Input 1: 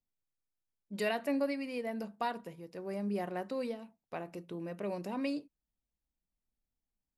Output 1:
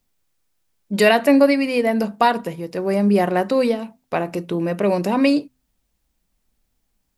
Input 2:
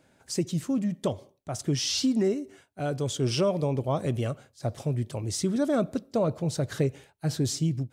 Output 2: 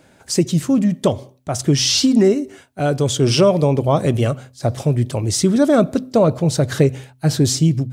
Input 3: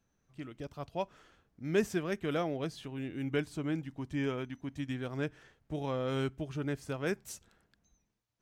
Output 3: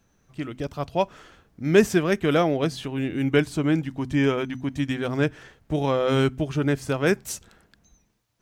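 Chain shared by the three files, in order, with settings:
de-hum 127.9 Hz, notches 2; normalise peaks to -3 dBFS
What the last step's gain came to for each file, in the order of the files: +19.0, +11.5, +12.5 dB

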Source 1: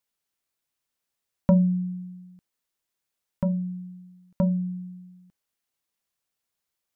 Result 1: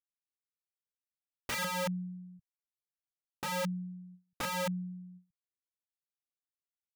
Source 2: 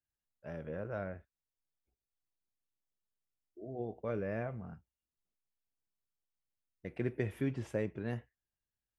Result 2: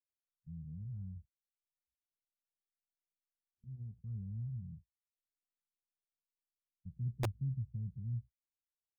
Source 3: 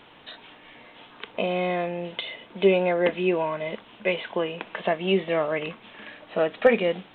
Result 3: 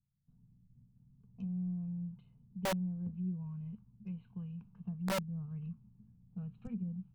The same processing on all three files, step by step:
gate with hold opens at -39 dBFS; low-pass opened by the level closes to 310 Hz, open at -22 dBFS; inverse Chebyshev band-stop 300–3700 Hz, stop band 40 dB; treble ducked by the level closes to 660 Hz, closed at -39 dBFS; low shelf 97 Hz -3 dB; wrapped overs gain 34.5 dB; gain +5 dB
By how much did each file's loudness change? -9.5, -3.0, -15.0 LU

